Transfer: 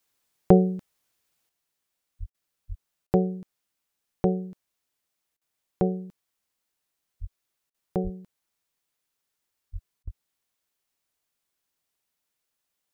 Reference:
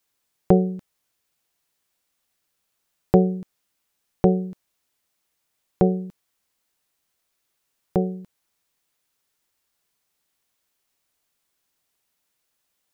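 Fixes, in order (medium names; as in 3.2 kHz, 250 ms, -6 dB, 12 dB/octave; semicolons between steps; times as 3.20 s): de-plosive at 2.19/2.68/7.20/8.03/9.72/10.04 s; interpolate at 2.30/3.07/5.37/7.70/10.03 s, 42 ms; gain correction +6 dB, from 1.49 s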